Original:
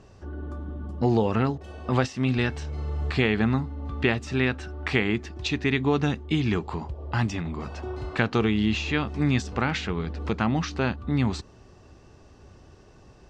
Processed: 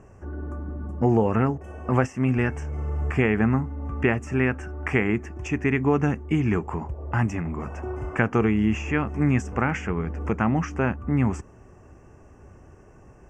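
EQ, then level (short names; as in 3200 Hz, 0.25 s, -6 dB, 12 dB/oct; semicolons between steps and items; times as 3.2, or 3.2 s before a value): Butterworth band-stop 4000 Hz, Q 0.95; +2.0 dB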